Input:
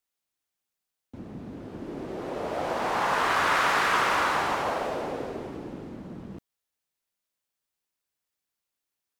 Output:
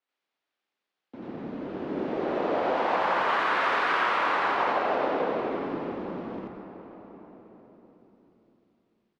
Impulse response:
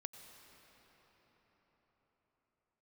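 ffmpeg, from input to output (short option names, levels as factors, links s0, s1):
-filter_complex "[0:a]acrossover=split=210 4800:gain=0.0708 1 0.112[s0][s1][s2];[s0][s1][s2]amix=inputs=3:normalize=0,adynamicsmooth=sensitivity=7:basefreq=6300,asplit=5[s3][s4][s5][s6][s7];[s4]adelay=83,afreqshift=-73,volume=0.211[s8];[s5]adelay=166,afreqshift=-146,volume=0.0871[s9];[s6]adelay=249,afreqshift=-219,volume=0.0355[s10];[s7]adelay=332,afreqshift=-292,volume=0.0146[s11];[s3][s8][s9][s10][s11]amix=inputs=5:normalize=0,acompressor=threshold=0.0316:ratio=6,asplit=2[s12][s13];[1:a]atrim=start_sample=2205,adelay=87[s14];[s13][s14]afir=irnorm=-1:irlink=0,volume=2[s15];[s12][s15]amix=inputs=2:normalize=0,adynamicequalizer=threshold=0.00251:dfrequency=5900:dqfactor=0.7:tfrequency=5900:tqfactor=0.7:attack=5:release=100:ratio=0.375:range=3.5:mode=cutabove:tftype=highshelf,volume=1.5"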